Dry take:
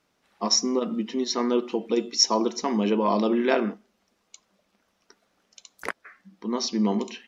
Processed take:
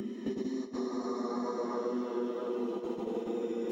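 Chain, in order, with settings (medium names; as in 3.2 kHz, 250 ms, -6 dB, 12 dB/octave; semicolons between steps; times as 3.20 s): Paulstretch 8×, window 0.50 s, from 1.03 s; gate with hold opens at -19 dBFS; high-order bell 3.8 kHz -14.5 dB; de-hum 133 Hz, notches 3; in parallel at -2.5 dB: compression 6:1, threshold -35 dBFS, peak gain reduction 16 dB; on the sum: vibrato 1.1 Hz 14 cents; plain phase-vocoder stretch 0.51×; on a send: two-band feedback delay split 300 Hz, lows 661 ms, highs 270 ms, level -11.5 dB; on the sum: three bands compressed up and down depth 100%; trim -8 dB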